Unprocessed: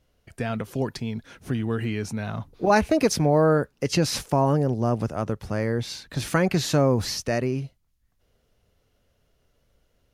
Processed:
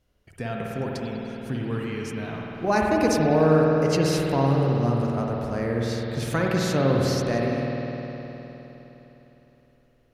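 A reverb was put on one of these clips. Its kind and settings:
spring reverb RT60 3.8 s, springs 51 ms, chirp 50 ms, DRR −2 dB
level −4 dB

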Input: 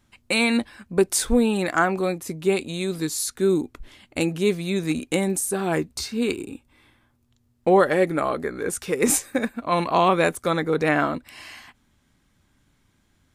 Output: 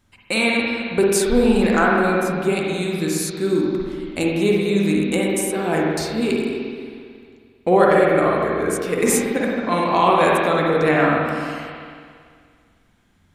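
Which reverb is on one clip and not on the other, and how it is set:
spring reverb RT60 2.1 s, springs 45/55 ms, chirp 35 ms, DRR −3 dB

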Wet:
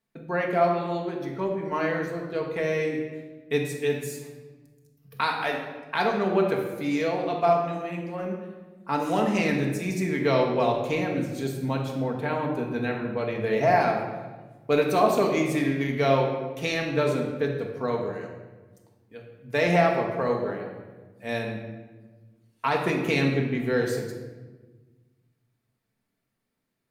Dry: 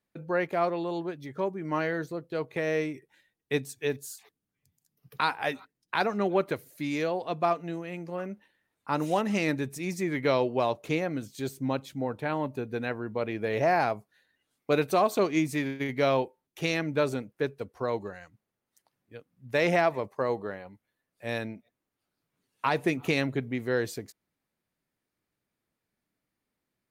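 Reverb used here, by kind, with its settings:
rectangular room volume 1,000 cubic metres, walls mixed, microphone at 1.6 metres

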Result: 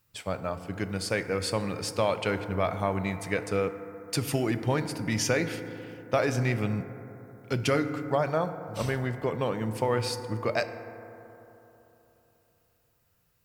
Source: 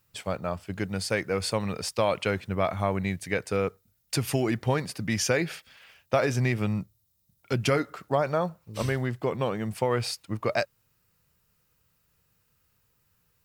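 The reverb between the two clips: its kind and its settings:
feedback delay network reverb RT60 3.4 s, high-frequency decay 0.25×, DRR 9 dB
level −1.5 dB

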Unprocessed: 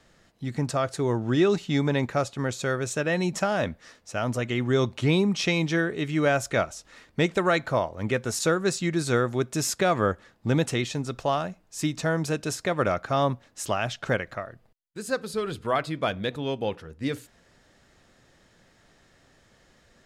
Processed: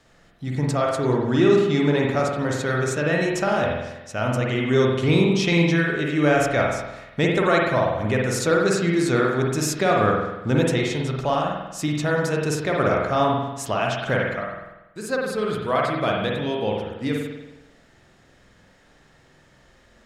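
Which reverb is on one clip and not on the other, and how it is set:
spring reverb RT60 1 s, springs 47 ms, chirp 50 ms, DRR −1.5 dB
level +1 dB

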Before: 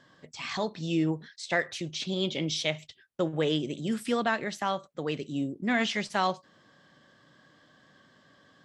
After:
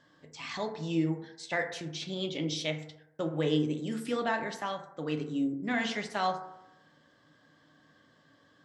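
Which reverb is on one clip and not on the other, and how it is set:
feedback delay network reverb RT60 0.87 s, low-frequency decay 0.85×, high-frequency decay 0.3×, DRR 4 dB
level −5 dB

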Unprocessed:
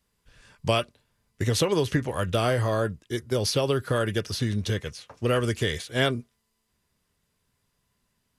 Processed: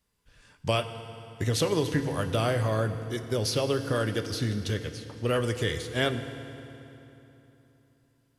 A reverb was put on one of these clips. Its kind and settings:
feedback delay network reverb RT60 3.2 s, low-frequency decay 1.25×, high-frequency decay 0.8×, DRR 8.5 dB
level −3 dB

